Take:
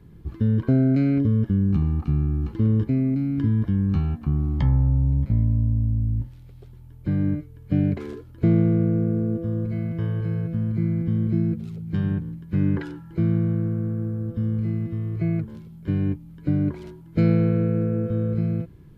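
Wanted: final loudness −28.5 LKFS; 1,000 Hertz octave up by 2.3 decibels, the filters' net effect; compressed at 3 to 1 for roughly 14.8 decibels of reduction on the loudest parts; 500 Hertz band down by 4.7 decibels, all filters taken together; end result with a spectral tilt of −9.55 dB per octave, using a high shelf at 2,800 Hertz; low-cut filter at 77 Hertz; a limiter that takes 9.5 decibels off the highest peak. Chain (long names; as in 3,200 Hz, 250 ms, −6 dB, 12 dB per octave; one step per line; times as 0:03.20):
high-pass filter 77 Hz
parametric band 500 Hz −8 dB
parametric band 1,000 Hz +5 dB
high-shelf EQ 2,800 Hz +5.5 dB
downward compressor 3 to 1, threshold −37 dBFS
level +11.5 dB
brickwall limiter −20 dBFS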